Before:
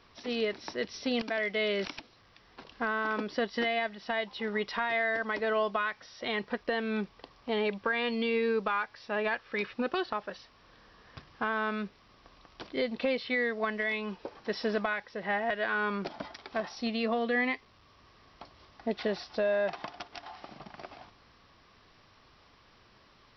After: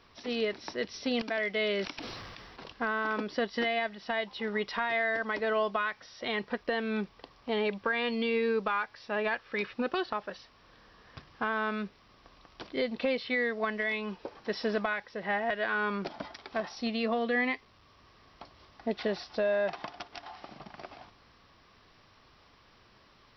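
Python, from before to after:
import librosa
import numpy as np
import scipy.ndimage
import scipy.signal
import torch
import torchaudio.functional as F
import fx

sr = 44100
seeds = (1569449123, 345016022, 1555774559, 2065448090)

y = fx.sustainer(x, sr, db_per_s=24.0, at=(1.98, 2.72))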